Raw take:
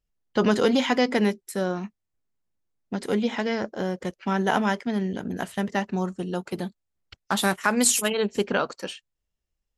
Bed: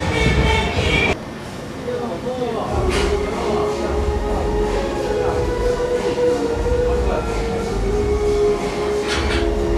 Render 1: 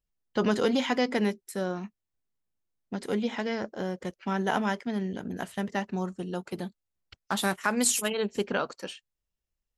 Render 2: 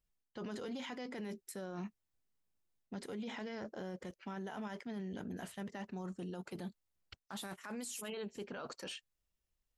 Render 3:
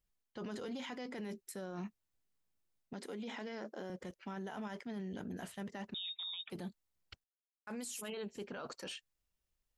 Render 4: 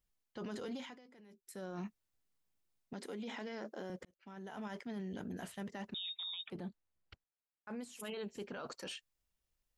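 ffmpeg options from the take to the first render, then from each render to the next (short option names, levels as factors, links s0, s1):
-af "volume=0.596"
-af "areverse,acompressor=threshold=0.0158:ratio=5,areverse,alimiter=level_in=3.98:limit=0.0631:level=0:latency=1:release=11,volume=0.251"
-filter_complex "[0:a]asettb=1/sr,asplit=3[s0][s1][s2];[s0]atrim=end=2.934[s3];[s1]atrim=start=2.93:end=3.9,asetpts=PTS-STARTPTS,afade=t=in:d=0.004:c=qsin,afade=t=out:st=0.966:d=0.004:c=qsin,highpass=f=200:w=0.5412,highpass=f=200:w=1.3066[s4];[s2]atrim=start=3.896[s5];[s3][s4]acrossfade=d=0.004:c1=hsin:c2=qsin[s6];[s6][s5]acrossfade=d=0.004:c1=qsin:c2=hsin,asettb=1/sr,asplit=3[s7][s8][s9];[s7]atrim=end=5.944[s10];[s8]atrim=start=5.94:end=6.5,asetpts=PTS-STARTPTS,afade=t=in:d=0.004:c=qsin,afade=t=out:st=0.556:d=0.004:c=qsin,lowpass=f=3300:t=q:w=0.5098,lowpass=f=3300:t=q:w=0.6013,lowpass=f=3300:t=q:w=0.9,lowpass=f=3300:t=q:w=2.563,afreqshift=-3900[s11];[s9]atrim=start=6.496[s12];[s10][s11]acrossfade=d=0.004:c1=hsin:c2=qsin[s13];[s13][s12]acrossfade=d=0.004:c1=qsin:c2=hsin,asplit=3[s14][s15][s16];[s14]atrim=end=7.24,asetpts=PTS-STARTPTS,afade=t=out:st=7.236:d=0.004:c=hsin[s17];[s15]atrim=start=7.24:end=7.67,asetpts=PTS-STARTPTS,volume=0[s18];[s16]atrim=start=7.67,asetpts=PTS-STARTPTS,afade=t=in:d=0.004:c=hsin[s19];[s17][s18][s19]concat=n=3:v=0:a=1"
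-filter_complex "[0:a]asettb=1/sr,asplit=3[s0][s1][s2];[s0]atrim=end=6.504[s3];[s1]atrim=start=6.5:end=8,asetpts=PTS-STARTPTS,afade=t=in:d=0.004:c=qsin,afade=t=out:st=1.496:d=0.004:c=qsin,lowpass=f=1800:p=1[s4];[s2]atrim=start=7.996[s5];[s3][s4]acrossfade=d=0.004:c1=hsin:c2=qsin[s6];[s6][s5]acrossfade=d=0.004:c1=qsin:c2=hsin,asplit=4[s7][s8][s9][s10];[s7]atrim=end=1.01,asetpts=PTS-STARTPTS,afade=t=out:st=0.74:d=0.27:silence=0.141254[s11];[s8]atrim=start=1.01:end=1.38,asetpts=PTS-STARTPTS,volume=0.141[s12];[s9]atrim=start=1.38:end=4.05,asetpts=PTS-STARTPTS,afade=t=in:d=0.27:silence=0.141254,afade=t=out:st=2.666:d=0.004:c=hsin[s13];[s10]atrim=start=4.05,asetpts=PTS-STARTPTS,afade=t=in:d=0.66[s14];[s11][s12][s13][s14]concat=n=4:v=0:a=1"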